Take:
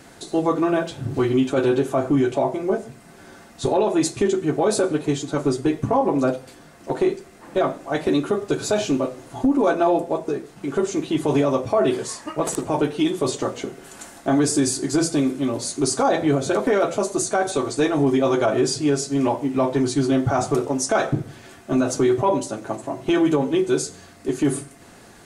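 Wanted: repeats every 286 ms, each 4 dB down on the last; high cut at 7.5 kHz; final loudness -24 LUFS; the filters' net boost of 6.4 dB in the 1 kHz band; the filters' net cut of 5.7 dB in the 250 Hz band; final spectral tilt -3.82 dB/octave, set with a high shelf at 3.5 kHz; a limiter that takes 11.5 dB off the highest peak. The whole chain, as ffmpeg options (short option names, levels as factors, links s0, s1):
-af "lowpass=7500,equalizer=f=250:t=o:g=-8.5,equalizer=f=1000:t=o:g=8.5,highshelf=f=3500:g=7,alimiter=limit=0.178:level=0:latency=1,aecho=1:1:286|572|858|1144|1430|1716|2002|2288|2574:0.631|0.398|0.25|0.158|0.0994|0.0626|0.0394|0.0249|0.0157,volume=0.944"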